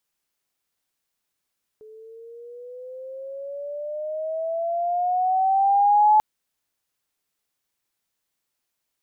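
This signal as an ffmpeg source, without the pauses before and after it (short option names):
-f lavfi -i "aevalsrc='pow(10,(-12+30*(t/4.39-1))/20)*sin(2*PI*430*4.39/(12*log(2)/12)*(exp(12*log(2)/12*t/4.39)-1))':d=4.39:s=44100"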